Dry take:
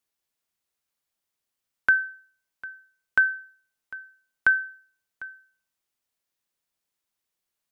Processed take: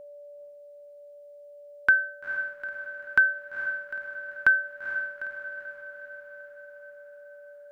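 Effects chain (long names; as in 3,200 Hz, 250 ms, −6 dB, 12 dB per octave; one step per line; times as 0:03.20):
steady tone 580 Hz −43 dBFS
on a send: feedback delay with all-pass diffusion 461 ms, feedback 57%, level −9 dB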